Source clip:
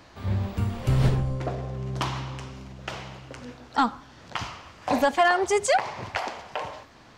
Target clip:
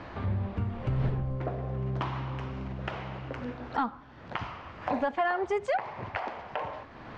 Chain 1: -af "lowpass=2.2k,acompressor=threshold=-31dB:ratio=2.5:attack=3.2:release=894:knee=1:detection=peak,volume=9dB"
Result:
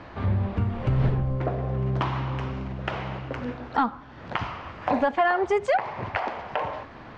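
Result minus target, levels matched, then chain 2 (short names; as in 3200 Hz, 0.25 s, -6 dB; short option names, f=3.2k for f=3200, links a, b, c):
compressor: peak gain reduction -6 dB
-af "lowpass=2.2k,acompressor=threshold=-41dB:ratio=2.5:attack=3.2:release=894:knee=1:detection=peak,volume=9dB"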